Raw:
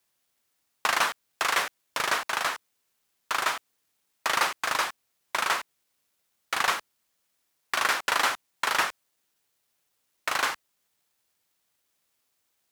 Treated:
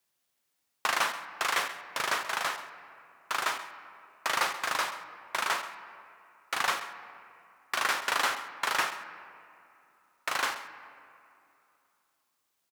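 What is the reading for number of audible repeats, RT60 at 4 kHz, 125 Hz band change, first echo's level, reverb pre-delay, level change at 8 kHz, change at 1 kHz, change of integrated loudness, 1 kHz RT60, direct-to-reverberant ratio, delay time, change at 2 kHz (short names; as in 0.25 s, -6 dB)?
1, 1.5 s, -3.5 dB, -15.0 dB, 6 ms, -3.5 dB, -3.0 dB, -3.5 dB, 2.8 s, 9.0 dB, 0.132 s, -3.0 dB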